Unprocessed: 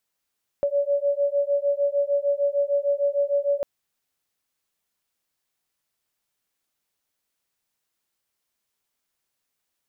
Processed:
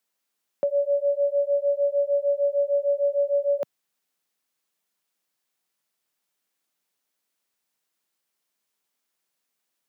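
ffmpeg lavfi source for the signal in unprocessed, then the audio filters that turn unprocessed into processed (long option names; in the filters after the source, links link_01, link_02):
-f lavfi -i "aevalsrc='0.0708*(sin(2*PI*565*t)+sin(2*PI*571.6*t))':duration=3:sample_rate=44100"
-af "highpass=frequency=150:width=0.5412,highpass=frequency=150:width=1.3066"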